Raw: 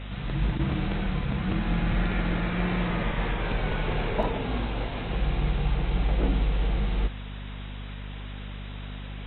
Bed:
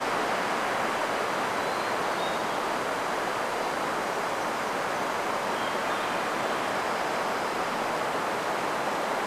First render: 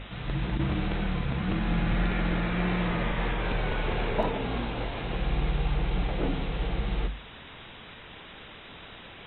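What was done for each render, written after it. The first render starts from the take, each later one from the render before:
mains-hum notches 50/100/150/200/250 Hz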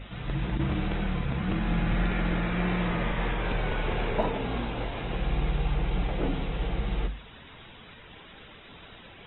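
broadband denoise 8 dB, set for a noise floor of −46 dBFS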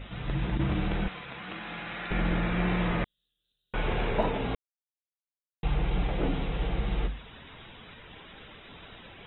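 0:01.08–0:02.11: high-pass filter 1,200 Hz 6 dB per octave
0:03.04–0:03.74: inverse Chebyshev high-pass filter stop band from 2,400 Hz, stop band 60 dB
0:04.55–0:05.63: silence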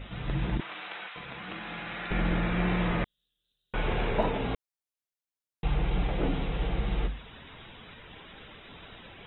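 0:00.60–0:01.16: high-pass filter 1,000 Hz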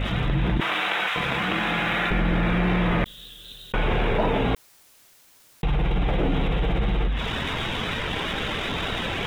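leveller curve on the samples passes 1
envelope flattener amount 70%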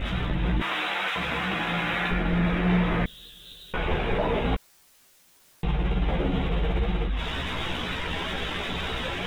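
multi-voice chorus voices 6, 0.76 Hz, delay 14 ms, depth 3.2 ms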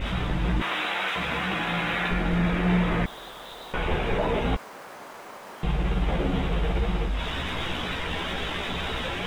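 mix in bed −13.5 dB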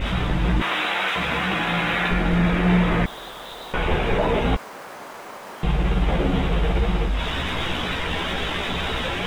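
level +4.5 dB

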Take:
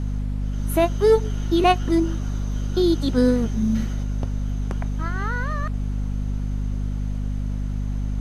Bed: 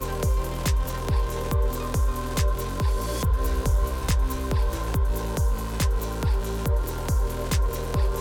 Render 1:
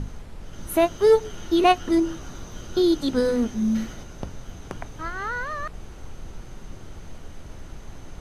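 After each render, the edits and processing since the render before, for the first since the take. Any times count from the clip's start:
mains-hum notches 50/100/150/200/250/300 Hz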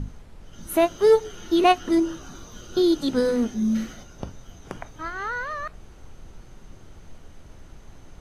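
noise reduction from a noise print 6 dB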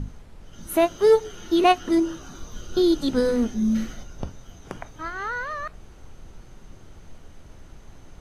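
0:02.40–0:04.27: low-shelf EQ 62 Hz +10 dB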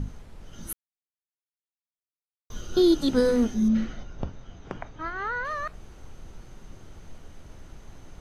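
0:00.73–0:02.50: silence
0:03.68–0:05.45: high-frequency loss of the air 150 metres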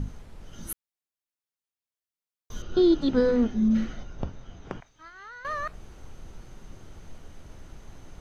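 0:02.62–0:03.71: high-frequency loss of the air 180 metres
0:04.80–0:05.45: first-order pre-emphasis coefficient 0.9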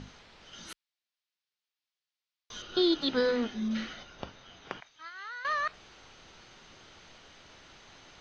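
low-pass filter 4,600 Hz 24 dB per octave
spectral tilt +4.5 dB per octave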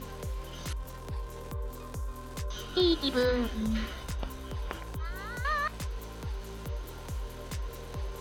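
mix in bed −13.5 dB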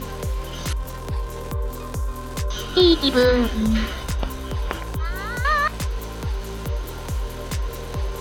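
level +10.5 dB

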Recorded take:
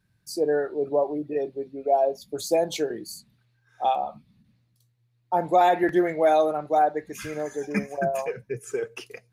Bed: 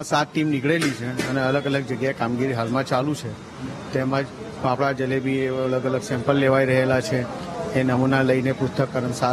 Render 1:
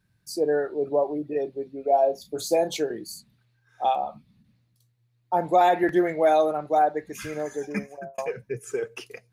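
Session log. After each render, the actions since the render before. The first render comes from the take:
0:01.87–0:02.71: double-tracking delay 33 ms −9 dB
0:07.58–0:08.18: fade out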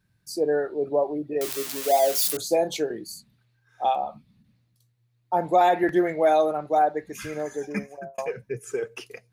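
0:01.41–0:02.37: spike at every zero crossing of −16.5 dBFS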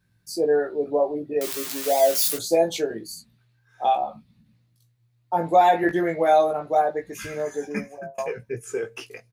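double-tracking delay 18 ms −3.5 dB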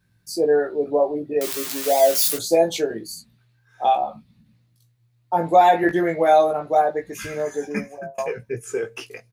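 level +2.5 dB

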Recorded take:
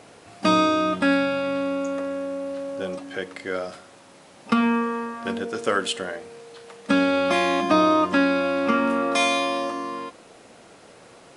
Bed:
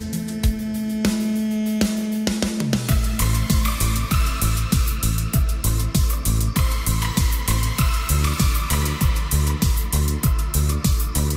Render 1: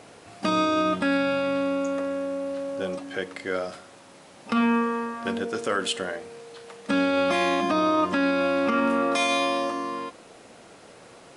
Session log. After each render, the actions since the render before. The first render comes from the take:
brickwall limiter −14 dBFS, peak gain reduction 7.5 dB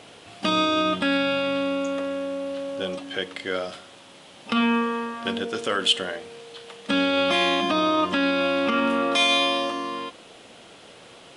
parametric band 3,200 Hz +10.5 dB 0.64 octaves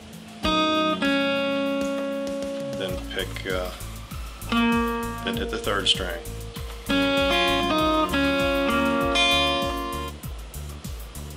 mix in bed −16 dB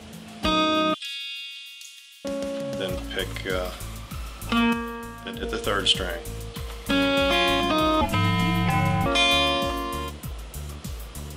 0:00.94–0:02.25: inverse Chebyshev high-pass filter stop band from 500 Hz, stop band 80 dB
0:04.73–0:05.43: tuned comb filter 270 Hz, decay 0.36 s
0:08.01–0:09.06: frequency shifter −380 Hz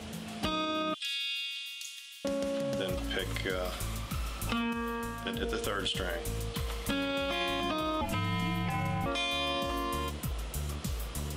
brickwall limiter −16.5 dBFS, peak gain reduction 9 dB
downward compressor, threshold −29 dBFS, peak gain reduction 8 dB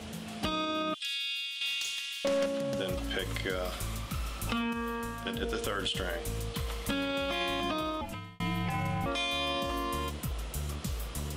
0:01.61–0:02.46: mid-hump overdrive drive 18 dB, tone 4,000 Hz, clips at −20 dBFS
0:07.78–0:08.40: fade out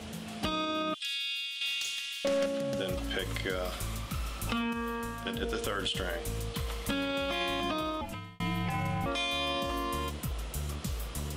0:01.05–0:02.97: Butterworth band-reject 990 Hz, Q 5.7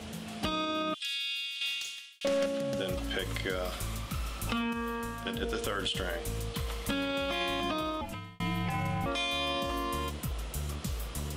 0:01.66–0:02.21: fade out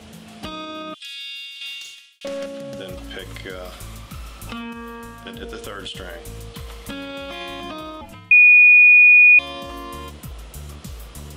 0:01.13–0:01.95: double-tracking delay 45 ms −6.5 dB
0:08.31–0:09.39: beep over 2,460 Hz −6.5 dBFS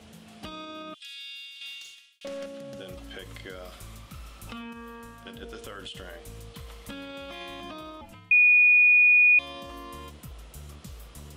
level −8 dB

